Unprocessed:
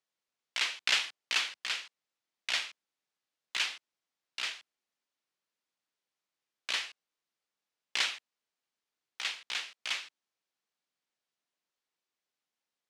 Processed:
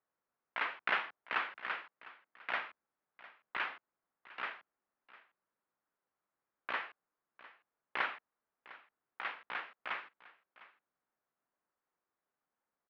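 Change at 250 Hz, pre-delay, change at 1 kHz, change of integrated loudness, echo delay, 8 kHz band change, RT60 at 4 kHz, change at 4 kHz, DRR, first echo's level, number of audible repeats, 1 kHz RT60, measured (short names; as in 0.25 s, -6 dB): +4.0 dB, none, +5.5 dB, -6.0 dB, 0.704 s, under -35 dB, none, -16.0 dB, none, -19.0 dB, 1, none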